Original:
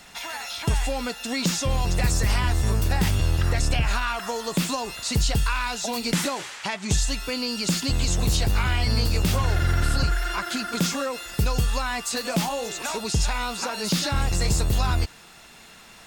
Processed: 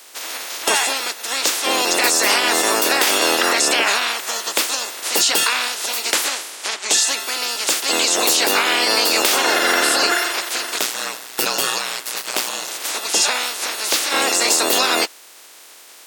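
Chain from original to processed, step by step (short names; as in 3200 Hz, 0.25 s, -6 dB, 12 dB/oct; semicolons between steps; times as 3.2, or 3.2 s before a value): spectral limiter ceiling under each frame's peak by 25 dB; HPF 310 Hz 24 dB/oct; 10.78–12.68 ring modulator 60 Hz; gain +5 dB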